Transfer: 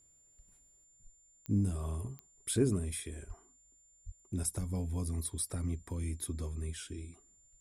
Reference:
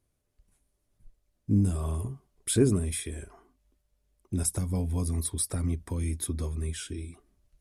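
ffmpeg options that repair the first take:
-filter_complex "[0:a]adeclick=t=4,bandreject=f=7.2k:w=30,asplit=3[a][b][c];[a]afade=t=out:st=3.27:d=0.02[d];[b]highpass=f=140:w=0.5412,highpass=f=140:w=1.3066,afade=t=in:st=3.27:d=0.02,afade=t=out:st=3.39:d=0.02[e];[c]afade=t=in:st=3.39:d=0.02[f];[d][e][f]amix=inputs=3:normalize=0,asplit=3[g][h][i];[g]afade=t=out:st=4.05:d=0.02[j];[h]highpass=f=140:w=0.5412,highpass=f=140:w=1.3066,afade=t=in:st=4.05:d=0.02,afade=t=out:st=4.17:d=0.02[k];[i]afade=t=in:st=4.17:d=0.02[l];[j][k][l]amix=inputs=3:normalize=0,asplit=3[m][n][o];[m]afade=t=out:st=4.59:d=0.02[p];[n]highpass=f=140:w=0.5412,highpass=f=140:w=1.3066,afade=t=in:st=4.59:d=0.02,afade=t=out:st=4.71:d=0.02[q];[o]afade=t=in:st=4.71:d=0.02[r];[p][q][r]amix=inputs=3:normalize=0,asetnsamples=n=441:p=0,asendcmd='0.84 volume volume 6.5dB',volume=0dB"

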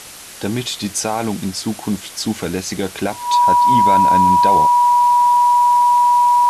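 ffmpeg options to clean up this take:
-af "bandreject=f=970:w=30,afwtdn=0.02"

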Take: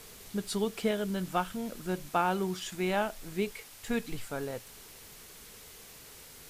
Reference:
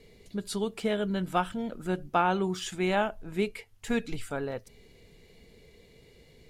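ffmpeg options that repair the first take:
-af "afwtdn=0.0032,asetnsamples=n=441:p=0,asendcmd='0.91 volume volume 3dB',volume=0dB"

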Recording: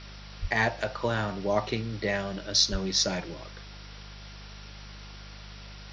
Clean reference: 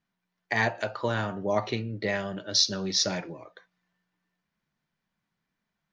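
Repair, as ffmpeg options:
-filter_complex "[0:a]bandreject=f=50.7:t=h:w=4,bandreject=f=101.4:t=h:w=4,bandreject=f=152.1:t=h:w=4,bandreject=f=202.8:t=h:w=4,bandreject=f=1.4k:w=30,asplit=3[a][b][c];[a]afade=t=out:st=0.41:d=0.02[d];[b]highpass=f=140:w=0.5412,highpass=f=140:w=1.3066,afade=t=in:st=0.41:d=0.02,afade=t=out:st=0.53:d=0.02[e];[c]afade=t=in:st=0.53:d=0.02[f];[d][e][f]amix=inputs=3:normalize=0,asplit=3[g][h][i];[g]afade=t=out:st=2.71:d=0.02[j];[h]highpass=f=140:w=0.5412,highpass=f=140:w=1.3066,afade=t=in:st=2.71:d=0.02,afade=t=out:st=2.83:d=0.02[k];[i]afade=t=in:st=2.83:d=0.02[l];[j][k][l]amix=inputs=3:normalize=0,afwtdn=0.0063"

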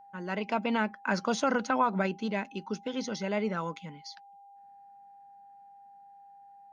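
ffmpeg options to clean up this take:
-af "bandreject=f=800:w=30"

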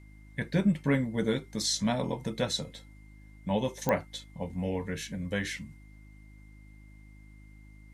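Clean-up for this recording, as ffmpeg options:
-af "adeclick=t=4,bandreject=f=51.9:t=h:w=4,bandreject=f=103.8:t=h:w=4,bandreject=f=155.7:t=h:w=4,bandreject=f=207.6:t=h:w=4,bandreject=f=259.5:t=h:w=4,bandreject=f=311.4:t=h:w=4,bandreject=f=2.1k:w=30"

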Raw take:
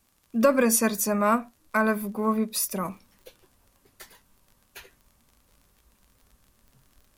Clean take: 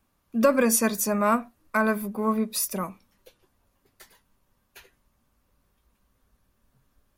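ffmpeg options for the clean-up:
-af "adeclick=t=4,agate=range=-21dB:threshold=-57dB,asetnsamples=n=441:p=0,asendcmd='2.85 volume volume -4.5dB',volume=0dB"

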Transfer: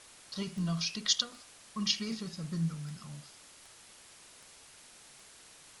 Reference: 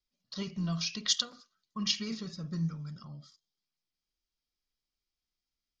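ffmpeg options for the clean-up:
-af "adeclick=t=4,afwtdn=0.0022"

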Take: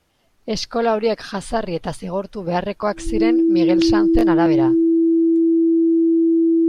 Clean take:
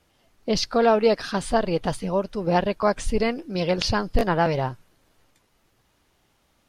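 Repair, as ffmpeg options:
-af "bandreject=f=330:w=30"

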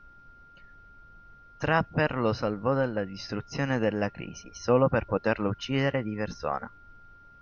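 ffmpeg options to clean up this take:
-af "bandreject=f=1.4k:w=30,agate=range=-21dB:threshold=-45dB"

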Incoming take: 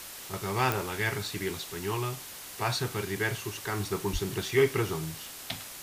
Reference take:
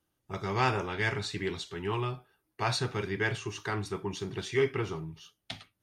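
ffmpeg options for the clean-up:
-filter_complex "[0:a]adeclick=t=4,asplit=3[a][b][c];[a]afade=t=out:st=4.12:d=0.02[d];[b]highpass=f=140:w=0.5412,highpass=f=140:w=1.3066,afade=t=in:st=4.12:d=0.02,afade=t=out:st=4.24:d=0.02[e];[c]afade=t=in:st=4.24:d=0.02[f];[d][e][f]amix=inputs=3:normalize=0,afwtdn=0.0079,asetnsamples=n=441:p=0,asendcmd='3.8 volume volume -3.5dB',volume=0dB"

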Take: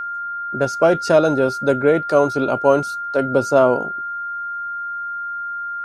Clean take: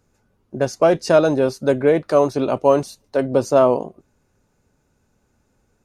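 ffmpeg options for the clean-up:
-af "bandreject=f=1.4k:w=30"

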